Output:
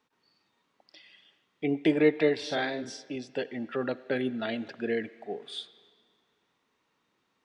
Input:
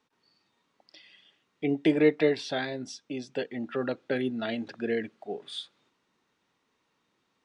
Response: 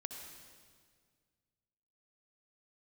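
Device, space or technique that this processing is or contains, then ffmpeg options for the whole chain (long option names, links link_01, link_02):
filtered reverb send: -filter_complex "[0:a]asplit=2[link_01][link_02];[link_02]highpass=frequency=570:poles=1,lowpass=4100[link_03];[1:a]atrim=start_sample=2205[link_04];[link_03][link_04]afir=irnorm=-1:irlink=0,volume=-8dB[link_05];[link_01][link_05]amix=inputs=2:normalize=0,asettb=1/sr,asplit=3[link_06][link_07][link_08];[link_06]atrim=end=2.374[link_09];[link_07]atrim=start=2.37:end=3.16,asetpts=PTS-STARTPTS,afade=type=in:duration=0.004:curve=qsin,afade=type=out:start_time=0.786:duration=0.004:curve=qsin,asplit=2[link_10][link_11];[link_11]adelay=49,volume=-4dB[link_12];[link_10][link_12]amix=inputs=2:normalize=0,atrim=end_sample=34839[link_13];[link_08]atrim=start=3.156[link_14];[link_09][link_13]acrossfade=duration=0.004:curve1=hsin:curve2=qsin[link_15];[link_15][link_14]acrossfade=duration=0.004:curve1=qsin:curve2=hsin,volume=-1.5dB"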